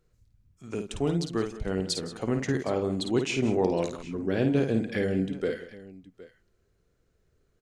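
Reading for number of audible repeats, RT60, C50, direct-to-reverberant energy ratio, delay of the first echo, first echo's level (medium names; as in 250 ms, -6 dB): 3, no reverb, no reverb, no reverb, 53 ms, -6.5 dB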